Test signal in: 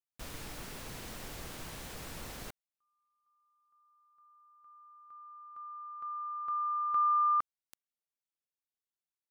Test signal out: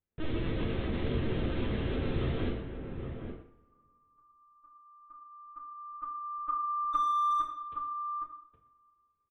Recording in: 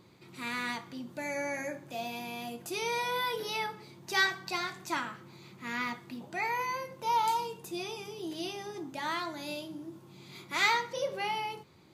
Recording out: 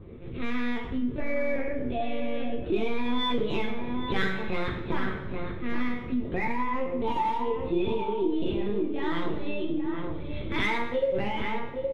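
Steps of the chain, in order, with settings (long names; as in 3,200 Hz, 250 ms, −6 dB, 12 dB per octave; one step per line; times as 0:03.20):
on a send: single-tap delay 109 ms −15.5 dB
on the sum: linear-prediction vocoder at 8 kHz pitch kept
slap from a distant wall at 140 metres, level −8 dB
in parallel at −6 dB: hard clipping −27 dBFS
on the sum: low shelf with overshoot 570 Hz +9.5 dB, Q 1.5
coupled-rooms reverb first 0.5 s, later 2 s, from −21 dB, DRR 0.5 dB
downward compressor 2 to 1, threshold −26 dBFS
low-pass that shuts in the quiet parts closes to 1,800 Hz, open at −26.5 dBFS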